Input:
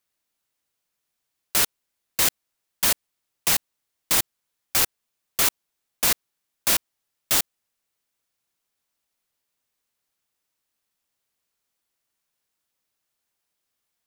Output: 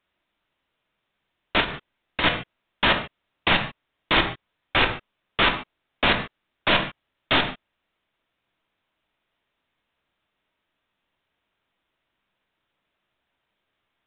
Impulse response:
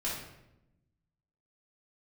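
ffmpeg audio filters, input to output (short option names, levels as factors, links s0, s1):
-filter_complex "[0:a]asplit=2[s0][s1];[1:a]atrim=start_sample=2205,atrim=end_sample=6615,highshelf=f=5100:g=-10[s2];[s1][s2]afir=irnorm=-1:irlink=0,volume=0.562[s3];[s0][s3]amix=inputs=2:normalize=0,asettb=1/sr,asplit=3[s4][s5][s6];[s4]atrim=end=1.604[s7];[s5]atrim=start=1.6:end=2.24,asetpts=PTS-STARTPTS,afade=t=in:d=0.004:c=qsin,afade=t=out:st=0.636:d=0.004:c=qsin,acompressor=threshold=0.0708:ratio=6[s8];[s6]atrim=start=2.236[s9];[s7][s8]acrossfade=d=0.004:c1=hsin:c2=qsin[s10];[s10][s9]acrossfade=d=0.004:c1=qsin:c2=hsin,aresample=8000,aresample=44100,volume=1.88"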